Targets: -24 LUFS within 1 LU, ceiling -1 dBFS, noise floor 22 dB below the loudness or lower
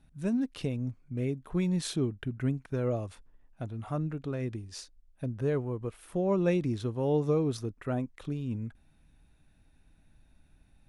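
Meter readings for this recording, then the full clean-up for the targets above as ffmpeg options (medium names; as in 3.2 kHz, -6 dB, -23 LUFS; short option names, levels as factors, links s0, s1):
loudness -32.5 LUFS; peak level -16.5 dBFS; loudness target -24.0 LUFS
-> -af "volume=2.66"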